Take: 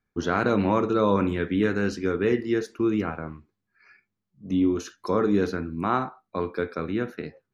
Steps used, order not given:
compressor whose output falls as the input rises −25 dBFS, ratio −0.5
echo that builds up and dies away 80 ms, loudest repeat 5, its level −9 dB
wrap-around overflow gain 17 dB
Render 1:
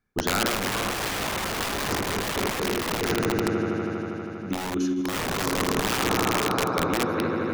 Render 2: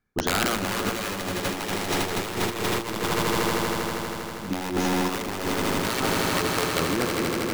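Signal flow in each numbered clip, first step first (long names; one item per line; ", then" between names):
echo that builds up and dies away, then wrap-around overflow, then compressor whose output falls as the input rises
wrap-around overflow, then echo that builds up and dies away, then compressor whose output falls as the input rises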